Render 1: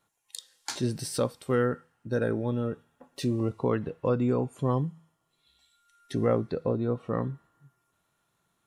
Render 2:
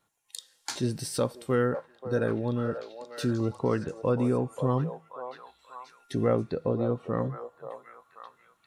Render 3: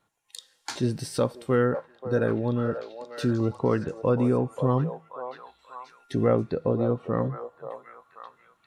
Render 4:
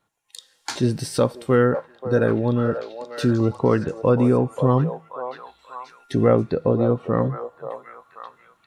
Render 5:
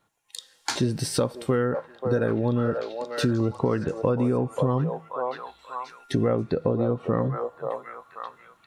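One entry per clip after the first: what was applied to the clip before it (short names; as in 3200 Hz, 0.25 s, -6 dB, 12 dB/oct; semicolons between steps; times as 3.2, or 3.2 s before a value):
delay with a stepping band-pass 0.533 s, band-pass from 710 Hz, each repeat 0.7 oct, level -5 dB
high shelf 5100 Hz -8 dB; gain +3 dB
AGC gain up to 5.5 dB
compressor 6:1, threshold -22 dBFS, peak gain reduction 10 dB; gain +2 dB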